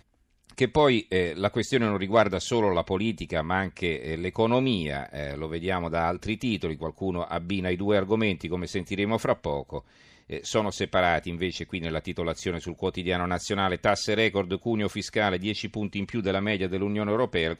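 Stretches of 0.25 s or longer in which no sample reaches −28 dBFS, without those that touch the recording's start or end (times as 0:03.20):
0:09.79–0:10.32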